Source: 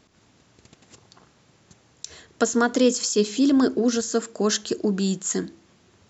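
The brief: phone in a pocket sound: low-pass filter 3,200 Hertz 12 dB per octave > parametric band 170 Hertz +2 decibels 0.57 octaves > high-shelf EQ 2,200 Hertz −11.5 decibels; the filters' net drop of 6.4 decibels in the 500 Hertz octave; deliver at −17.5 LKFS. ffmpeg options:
ffmpeg -i in.wav -af "lowpass=3200,equalizer=frequency=170:width_type=o:width=0.57:gain=2,equalizer=frequency=500:width_type=o:gain=-7,highshelf=frequency=2200:gain=-11.5,volume=8dB" out.wav

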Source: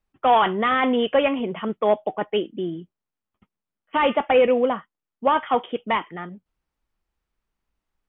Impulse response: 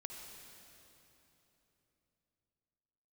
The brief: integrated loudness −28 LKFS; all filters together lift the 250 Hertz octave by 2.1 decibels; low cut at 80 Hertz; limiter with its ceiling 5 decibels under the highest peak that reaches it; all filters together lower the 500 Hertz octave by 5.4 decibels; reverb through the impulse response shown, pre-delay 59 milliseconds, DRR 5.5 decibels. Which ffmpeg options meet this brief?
-filter_complex "[0:a]highpass=80,equalizer=frequency=250:width_type=o:gain=4,equalizer=frequency=500:width_type=o:gain=-7,alimiter=limit=-15dB:level=0:latency=1,asplit=2[link_01][link_02];[1:a]atrim=start_sample=2205,adelay=59[link_03];[link_02][link_03]afir=irnorm=-1:irlink=0,volume=-2.5dB[link_04];[link_01][link_04]amix=inputs=2:normalize=0,volume=-3.5dB"

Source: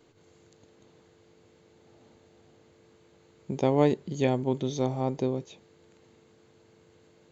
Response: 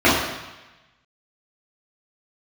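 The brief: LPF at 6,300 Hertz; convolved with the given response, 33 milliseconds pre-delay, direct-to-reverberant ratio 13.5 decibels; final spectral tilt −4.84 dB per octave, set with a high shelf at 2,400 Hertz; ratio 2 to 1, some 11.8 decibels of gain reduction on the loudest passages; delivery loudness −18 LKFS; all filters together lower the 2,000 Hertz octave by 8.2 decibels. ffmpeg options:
-filter_complex "[0:a]lowpass=6300,equalizer=frequency=2000:width_type=o:gain=-5.5,highshelf=frequency=2400:gain=-8.5,acompressor=threshold=-40dB:ratio=2,asplit=2[link_01][link_02];[1:a]atrim=start_sample=2205,adelay=33[link_03];[link_02][link_03]afir=irnorm=-1:irlink=0,volume=-39dB[link_04];[link_01][link_04]amix=inputs=2:normalize=0,volume=20dB"

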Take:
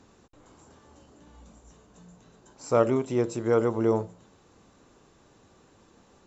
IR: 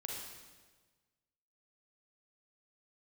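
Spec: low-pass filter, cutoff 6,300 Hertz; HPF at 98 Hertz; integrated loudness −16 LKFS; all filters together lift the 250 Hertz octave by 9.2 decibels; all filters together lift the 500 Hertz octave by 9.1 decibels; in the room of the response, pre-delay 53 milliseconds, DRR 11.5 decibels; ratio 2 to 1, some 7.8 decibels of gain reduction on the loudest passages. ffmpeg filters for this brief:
-filter_complex "[0:a]highpass=98,lowpass=6300,equalizer=frequency=250:width_type=o:gain=9,equalizer=frequency=500:width_type=o:gain=8,acompressor=threshold=-23dB:ratio=2,asplit=2[link_01][link_02];[1:a]atrim=start_sample=2205,adelay=53[link_03];[link_02][link_03]afir=irnorm=-1:irlink=0,volume=-11dB[link_04];[link_01][link_04]amix=inputs=2:normalize=0,volume=7.5dB"

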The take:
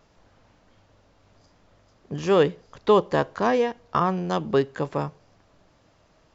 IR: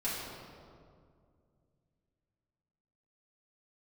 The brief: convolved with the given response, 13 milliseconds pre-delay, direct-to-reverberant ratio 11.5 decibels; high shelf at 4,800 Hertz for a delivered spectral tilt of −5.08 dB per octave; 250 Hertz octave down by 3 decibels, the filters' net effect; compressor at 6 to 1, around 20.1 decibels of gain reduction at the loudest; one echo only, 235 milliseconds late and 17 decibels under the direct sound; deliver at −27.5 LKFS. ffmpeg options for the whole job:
-filter_complex "[0:a]equalizer=frequency=250:width_type=o:gain=-4.5,highshelf=frequency=4800:gain=-4,acompressor=threshold=-37dB:ratio=6,aecho=1:1:235:0.141,asplit=2[link_01][link_02];[1:a]atrim=start_sample=2205,adelay=13[link_03];[link_02][link_03]afir=irnorm=-1:irlink=0,volume=-17dB[link_04];[link_01][link_04]amix=inputs=2:normalize=0,volume=13.5dB"

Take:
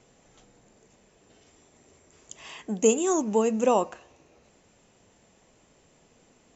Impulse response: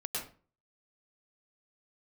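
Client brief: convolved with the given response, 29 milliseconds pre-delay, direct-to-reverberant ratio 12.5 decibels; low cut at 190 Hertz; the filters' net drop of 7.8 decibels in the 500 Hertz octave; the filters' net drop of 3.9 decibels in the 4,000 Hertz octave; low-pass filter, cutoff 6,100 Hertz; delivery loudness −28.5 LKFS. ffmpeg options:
-filter_complex "[0:a]highpass=190,lowpass=6100,equalizer=frequency=500:width_type=o:gain=-9,equalizer=frequency=4000:width_type=o:gain=-5.5,asplit=2[link_01][link_02];[1:a]atrim=start_sample=2205,adelay=29[link_03];[link_02][link_03]afir=irnorm=-1:irlink=0,volume=-15dB[link_04];[link_01][link_04]amix=inputs=2:normalize=0,volume=2dB"

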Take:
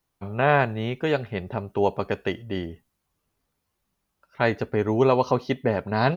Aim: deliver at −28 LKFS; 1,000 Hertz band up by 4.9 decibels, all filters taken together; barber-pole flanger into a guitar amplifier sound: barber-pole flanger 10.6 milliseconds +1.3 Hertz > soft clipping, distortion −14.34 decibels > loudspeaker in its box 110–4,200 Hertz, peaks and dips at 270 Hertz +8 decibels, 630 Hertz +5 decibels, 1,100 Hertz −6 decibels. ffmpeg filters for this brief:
ffmpeg -i in.wav -filter_complex "[0:a]equalizer=frequency=1000:width_type=o:gain=7,asplit=2[link_01][link_02];[link_02]adelay=10.6,afreqshift=1.3[link_03];[link_01][link_03]amix=inputs=2:normalize=1,asoftclip=threshold=-16dB,highpass=110,equalizer=frequency=270:width_type=q:width=4:gain=8,equalizer=frequency=630:width_type=q:width=4:gain=5,equalizer=frequency=1100:width_type=q:width=4:gain=-6,lowpass=frequency=4200:width=0.5412,lowpass=frequency=4200:width=1.3066,volume=-1.5dB" out.wav

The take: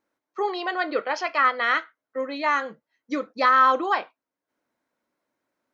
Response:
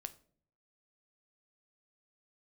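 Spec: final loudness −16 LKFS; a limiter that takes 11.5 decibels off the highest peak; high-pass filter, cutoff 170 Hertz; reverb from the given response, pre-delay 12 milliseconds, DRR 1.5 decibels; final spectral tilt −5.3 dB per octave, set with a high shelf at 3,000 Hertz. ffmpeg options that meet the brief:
-filter_complex "[0:a]highpass=170,highshelf=frequency=3000:gain=-6.5,alimiter=limit=-21dB:level=0:latency=1,asplit=2[link_01][link_02];[1:a]atrim=start_sample=2205,adelay=12[link_03];[link_02][link_03]afir=irnorm=-1:irlink=0,volume=2.5dB[link_04];[link_01][link_04]amix=inputs=2:normalize=0,volume=13dB"

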